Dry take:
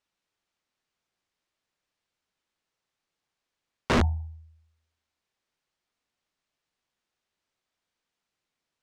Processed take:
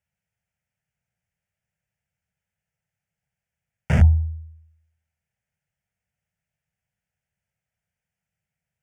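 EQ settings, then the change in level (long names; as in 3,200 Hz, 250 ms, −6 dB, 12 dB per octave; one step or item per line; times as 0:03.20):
high-pass filter 56 Hz
low shelf with overshoot 240 Hz +12.5 dB, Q 1.5
phaser with its sweep stopped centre 1,100 Hz, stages 6
0.0 dB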